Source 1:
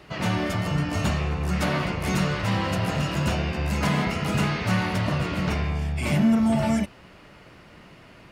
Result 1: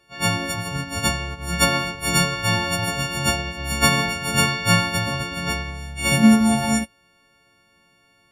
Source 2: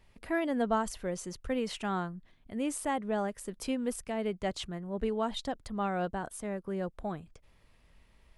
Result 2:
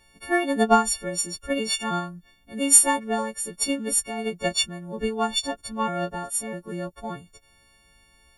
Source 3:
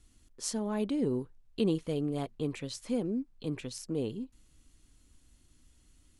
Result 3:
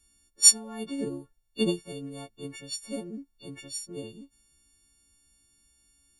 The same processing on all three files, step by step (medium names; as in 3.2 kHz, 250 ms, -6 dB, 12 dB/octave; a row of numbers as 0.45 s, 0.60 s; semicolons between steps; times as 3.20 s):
partials quantised in pitch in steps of 4 st; upward expansion 2.5:1, over -32 dBFS; peak normalisation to -3 dBFS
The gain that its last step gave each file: +8.0 dB, +14.0 dB, +9.5 dB